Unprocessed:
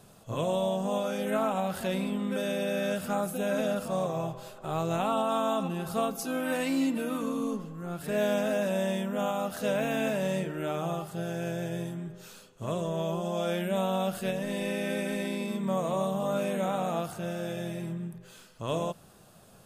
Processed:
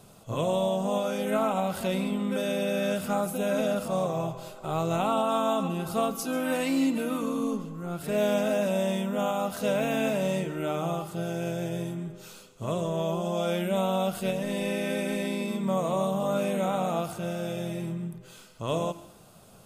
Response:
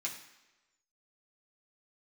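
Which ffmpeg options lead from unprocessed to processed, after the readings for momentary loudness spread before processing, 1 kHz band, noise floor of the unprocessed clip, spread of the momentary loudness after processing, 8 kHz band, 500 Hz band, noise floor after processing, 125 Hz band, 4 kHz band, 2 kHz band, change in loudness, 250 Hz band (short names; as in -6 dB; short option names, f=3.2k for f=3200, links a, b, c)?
8 LU, +2.0 dB, -55 dBFS, 8 LU, +2.5 dB, +2.0 dB, -52 dBFS, +2.0 dB, +2.0 dB, +0.5 dB, +2.0 dB, +2.0 dB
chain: -filter_complex "[0:a]bandreject=f=1.7k:w=8.4,acontrast=57,asplit=2[a][b];[1:a]atrim=start_sample=2205,adelay=135[c];[b][c]afir=irnorm=-1:irlink=0,volume=-17dB[d];[a][d]amix=inputs=2:normalize=0,volume=-4dB"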